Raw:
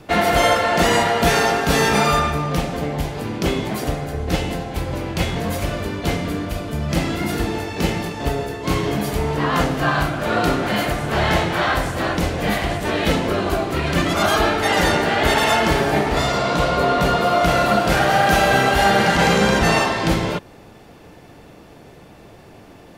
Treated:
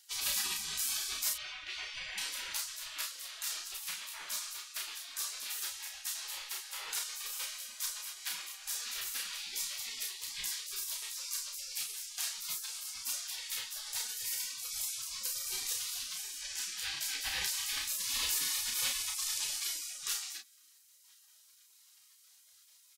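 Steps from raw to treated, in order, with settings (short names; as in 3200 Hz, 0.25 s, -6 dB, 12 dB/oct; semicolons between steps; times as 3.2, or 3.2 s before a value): 1.33–2.18 LPF 1600 Hz 12 dB/oct; spectral gate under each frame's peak -30 dB weak; on a send: early reflections 32 ms -4.5 dB, 45 ms -11 dB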